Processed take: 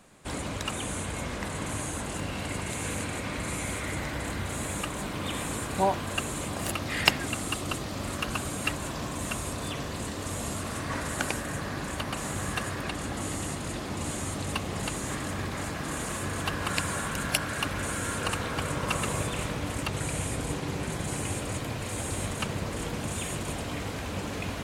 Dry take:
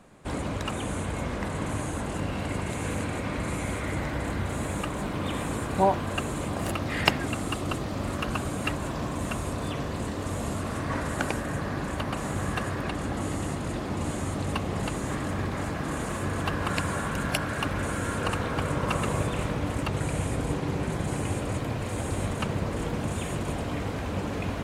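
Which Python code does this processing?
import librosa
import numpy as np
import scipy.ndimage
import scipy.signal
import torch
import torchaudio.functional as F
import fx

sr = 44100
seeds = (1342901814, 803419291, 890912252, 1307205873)

y = fx.high_shelf(x, sr, hz=2200.0, db=10.0)
y = y * librosa.db_to_amplitude(-4.0)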